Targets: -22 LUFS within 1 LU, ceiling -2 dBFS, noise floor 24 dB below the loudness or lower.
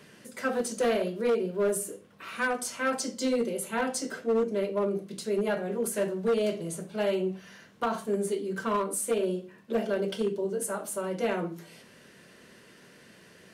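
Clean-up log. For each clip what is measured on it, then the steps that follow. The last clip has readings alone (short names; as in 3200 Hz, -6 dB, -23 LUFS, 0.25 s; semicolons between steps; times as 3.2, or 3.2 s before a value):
clipped 1.1%; flat tops at -21.0 dBFS; loudness -30.0 LUFS; peak -21.0 dBFS; loudness target -22.0 LUFS
-> clip repair -21 dBFS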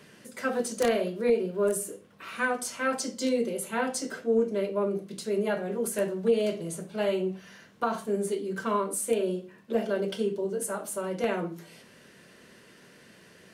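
clipped 0.0%; loudness -29.5 LUFS; peak -12.0 dBFS; loudness target -22.0 LUFS
-> gain +7.5 dB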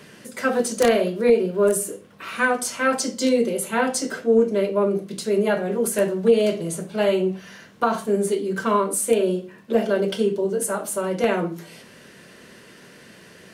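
loudness -22.0 LUFS; peak -4.5 dBFS; noise floor -48 dBFS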